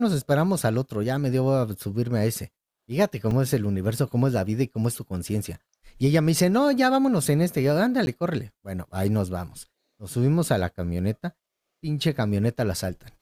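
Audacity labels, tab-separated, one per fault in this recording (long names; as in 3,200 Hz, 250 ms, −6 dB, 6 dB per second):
3.310000	3.310000	drop-out 2.3 ms
8.060000	8.070000	drop-out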